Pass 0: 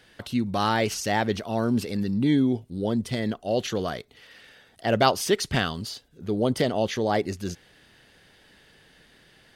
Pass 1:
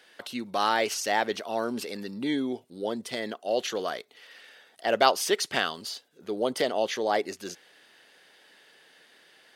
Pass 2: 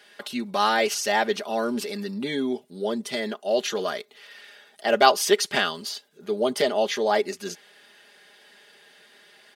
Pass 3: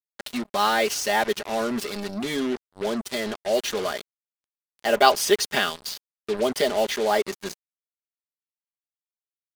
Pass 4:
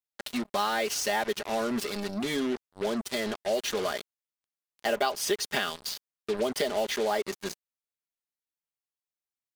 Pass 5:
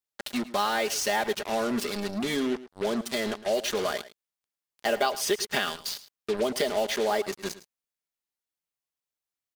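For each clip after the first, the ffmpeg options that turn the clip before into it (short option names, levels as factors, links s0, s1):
-af "highpass=410"
-af "aecho=1:1:4.9:0.72,volume=1.26"
-af "acrusher=bits=4:mix=0:aa=0.5"
-af "acompressor=threshold=0.0794:ratio=5,volume=0.794"
-af "aecho=1:1:109:0.15,volume=1.19"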